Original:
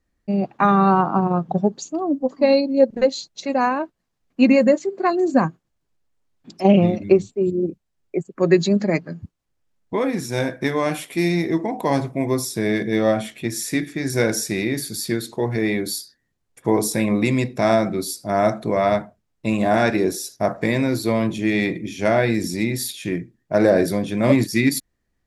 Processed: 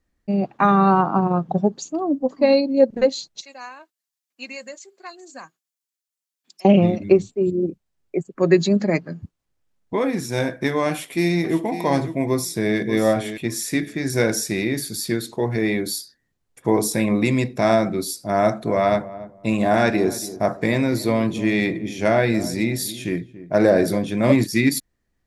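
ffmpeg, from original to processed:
-filter_complex "[0:a]asettb=1/sr,asplit=3[a][b][c];[a]atrim=end=3.414[d];[b]atrim=start=3.41:end=6.65,asetpts=PTS-STARTPTS,afade=t=in:d=0.004:c=qsin,afade=t=out:st=3.236:d=0.004:c=qsin,aderivative[e];[c]atrim=start=6.646[f];[d][e]acrossfade=d=0.004:c1=hsin:c2=qsin[g];[g][f]acrossfade=d=0.004:c1=qsin:c2=hsin,asplit=2[h][i];[i]afade=t=in:st=10.89:d=0.01,afade=t=out:st=11.61:d=0.01,aecho=0:1:550|1100:0.266073|0.0399109[j];[h][j]amix=inputs=2:normalize=0,asplit=2[k][l];[l]afade=t=in:st=12.29:d=0.01,afade=t=out:st=12.78:d=0.01,aecho=0:1:590|1180:0.298538|0.0447807[m];[k][m]amix=inputs=2:normalize=0,asettb=1/sr,asplit=3[n][o][p];[n]atrim=end=18.384[q];[o]atrim=start=18.38:end=23.98,asetpts=PTS-STARTPTS,afade=t=in:d=0.004:c=qsin,afade=t=out:st=5.596:d=0.004:c=qsin,asplit=2[r][s];[s]adelay=284,lowpass=f=860:p=1,volume=-14.5dB,asplit=2[t][u];[u]adelay=284,lowpass=f=860:p=1,volume=0.24,asplit=2[v][w];[w]adelay=284,lowpass=f=860:p=1,volume=0.24[x];[r][t][v][x]amix=inputs=4:normalize=0,atrim=end_sample=246960[y];[p]atrim=start=23.976[z];[q][y]acrossfade=d=0.004:c1=hsin:c2=qsin[aa];[aa][z]acrossfade=d=0.004:c1=qsin:c2=hsin"

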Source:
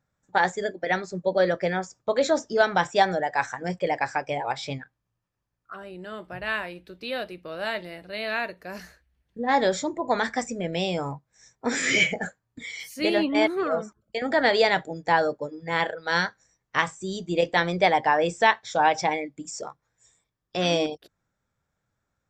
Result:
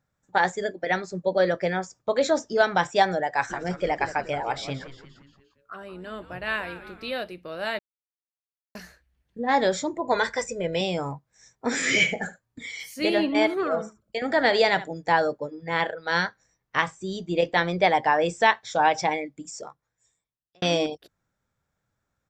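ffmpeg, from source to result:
-filter_complex "[0:a]asplit=3[a][b][c];[a]afade=t=out:st=3.49:d=0.02[d];[b]asplit=6[e][f][g][h][i][j];[f]adelay=175,afreqshift=-140,volume=-13dB[k];[g]adelay=350,afreqshift=-280,volume=-18.7dB[l];[h]adelay=525,afreqshift=-420,volume=-24.4dB[m];[i]adelay=700,afreqshift=-560,volume=-30dB[n];[j]adelay=875,afreqshift=-700,volume=-35.7dB[o];[e][k][l][m][n][o]amix=inputs=6:normalize=0,afade=t=in:st=3.49:d=0.02,afade=t=out:st=7.12:d=0.02[p];[c]afade=t=in:st=7.12:d=0.02[q];[d][p][q]amix=inputs=3:normalize=0,asettb=1/sr,asplit=3[r][s][t];[r]atrim=end=10.124[u];[s]atrim=start=10.12:end=10.81,asetpts=PTS-STARTPTS,afade=t=in:d=0.004:c=qsin,afade=t=out:st=0.686:d=0.004:c=qsin,aecho=1:1:2:0.71,atrim=end_sample=30429[v];[t]atrim=start=10.806[w];[u][v]acrossfade=d=0.004:c1=hsin:c2=qsin[x];[x][w]acrossfade=d=0.004:c1=qsin:c2=hsin,asettb=1/sr,asplit=3[y][z][aa];[y]atrim=end=11.714[ab];[z]atrim=start=11.71:end=14.88,asetpts=PTS-STARTPTS,afade=t=in:d=0.004:c=qsin,afade=t=out:st=3.166:d=0.004:c=qsin,aecho=1:1:74:0.15,atrim=end_sample=139797[ac];[aa]atrim=start=14.876[ad];[ab][ac]acrossfade=d=0.004:c1=hsin:c2=qsin[ae];[ae][ad]acrossfade=d=0.004:c1=qsin:c2=hsin,asettb=1/sr,asplit=3[af][ag][ah];[af]atrim=end=15.384[ai];[ag]atrim=start=15.38:end=17.9,asetpts=PTS-STARTPTS,afade=t=in:d=0.004:c=qsin,afade=t=out:st=2.516:d=0.004:c=qsin,equalizer=f=8.1k:w=1.2:g=-6.5[aj];[ah]atrim=start=17.896[ak];[ai][aj]acrossfade=d=0.004:c1=hsin:c2=qsin[al];[al][ak]acrossfade=d=0.004:c1=qsin:c2=hsin,asplit=4[am][an][ao][ap];[am]atrim=end=7.79,asetpts=PTS-STARTPTS,afade=t=out:st=7.786:d=0.004:c=hsin[aq];[an]atrim=start=7.79:end=8.75,asetpts=PTS-STARTPTS,volume=0[ar];[ao]atrim=start=8.75:end=20.62,asetpts=PTS-STARTPTS,afade=t=in:d=0.004:c=hsin,afade=t=out:st=10.42:d=1.45[as];[ap]atrim=start=20.62,asetpts=PTS-STARTPTS,afade=t=in:d=0.004:c=hsin[at];[aq][ar][as][at]concat=n=4:v=0:a=1"

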